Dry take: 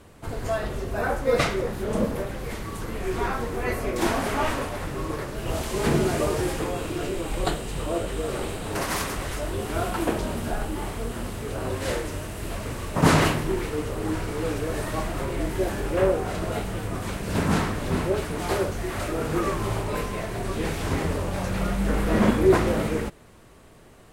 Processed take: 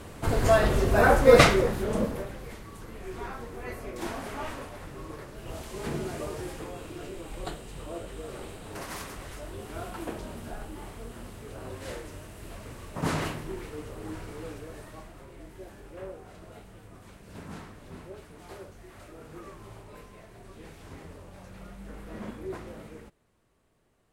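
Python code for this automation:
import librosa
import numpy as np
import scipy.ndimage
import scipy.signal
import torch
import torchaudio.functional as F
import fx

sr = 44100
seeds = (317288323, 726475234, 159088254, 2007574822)

y = fx.gain(x, sr, db=fx.line((1.4, 6.5), (1.95, -2.5), (2.64, -11.0), (14.33, -11.0), (15.21, -19.5)))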